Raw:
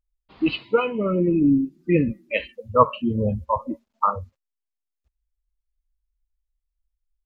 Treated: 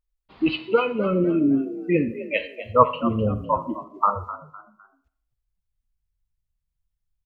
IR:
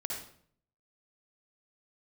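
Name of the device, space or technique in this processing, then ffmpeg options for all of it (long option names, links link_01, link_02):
filtered reverb send: -filter_complex "[0:a]asplit=2[link_01][link_02];[link_02]highpass=frequency=320:poles=1,lowpass=3900[link_03];[1:a]atrim=start_sample=2205[link_04];[link_03][link_04]afir=irnorm=-1:irlink=0,volume=-11.5dB[link_05];[link_01][link_05]amix=inputs=2:normalize=0,asettb=1/sr,asplit=3[link_06][link_07][link_08];[link_06]atrim=end=1.244[link_09];[link_07]atrim=start=1.24:end=2.63,asetpts=PTS-STARTPTS,afade=type=in:duration=0.004:curve=qsin,afade=type=out:start_time=1.386:duration=0.004:curve=qsin,highpass=frequency=210:poles=1[link_10];[link_08]atrim=start=2.626[link_11];[link_09][link_10]acrossfade=duration=0.004:curve1=hsin:curve2=qsin[link_12];[link_12][link_11]acrossfade=duration=0.004:curve1=qsin:curve2=hsin,asplit=4[link_13][link_14][link_15][link_16];[link_14]adelay=254,afreqshift=60,volume=-14dB[link_17];[link_15]adelay=508,afreqshift=120,volume=-23.9dB[link_18];[link_16]adelay=762,afreqshift=180,volume=-33.8dB[link_19];[link_13][link_17][link_18][link_19]amix=inputs=4:normalize=0,volume=-1dB"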